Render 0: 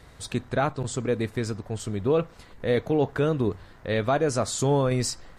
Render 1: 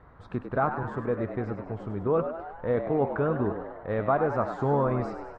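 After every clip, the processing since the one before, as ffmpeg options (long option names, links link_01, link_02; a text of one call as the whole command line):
ffmpeg -i in.wav -filter_complex "[0:a]lowpass=frequency=1200:width_type=q:width=2,asplit=2[link_01][link_02];[link_02]asplit=8[link_03][link_04][link_05][link_06][link_07][link_08][link_09][link_10];[link_03]adelay=100,afreqshift=85,volume=-9.5dB[link_11];[link_04]adelay=200,afreqshift=170,volume=-13.7dB[link_12];[link_05]adelay=300,afreqshift=255,volume=-17.8dB[link_13];[link_06]adelay=400,afreqshift=340,volume=-22dB[link_14];[link_07]adelay=500,afreqshift=425,volume=-26.1dB[link_15];[link_08]adelay=600,afreqshift=510,volume=-30.3dB[link_16];[link_09]adelay=700,afreqshift=595,volume=-34.4dB[link_17];[link_10]adelay=800,afreqshift=680,volume=-38.6dB[link_18];[link_11][link_12][link_13][link_14][link_15][link_16][link_17][link_18]amix=inputs=8:normalize=0[link_19];[link_01][link_19]amix=inputs=2:normalize=0,volume=-4dB" out.wav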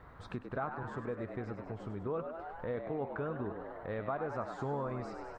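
ffmpeg -i in.wav -af "highshelf=frequency=2500:gain=9.5,acompressor=threshold=-41dB:ratio=2,volume=-1.5dB" out.wav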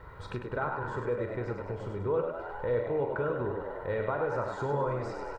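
ffmpeg -i in.wav -filter_complex "[0:a]aecho=1:1:2.1:0.52,asplit=2[link_01][link_02];[link_02]aecho=0:1:41|100:0.355|0.447[link_03];[link_01][link_03]amix=inputs=2:normalize=0,volume=4dB" out.wav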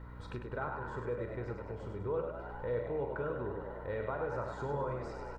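ffmpeg -i in.wav -af "aeval=exprs='val(0)+0.00794*(sin(2*PI*60*n/s)+sin(2*PI*2*60*n/s)/2+sin(2*PI*3*60*n/s)/3+sin(2*PI*4*60*n/s)/4+sin(2*PI*5*60*n/s)/5)':channel_layout=same,volume=-6dB" out.wav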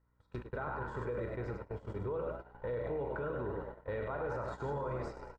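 ffmpeg -i in.wav -af "agate=range=-33dB:threshold=-40dB:ratio=16:detection=peak,alimiter=level_in=12dB:limit=-24dB:level=0:latency=1:release=55,volume=-12dB,volume=6dB" out.wav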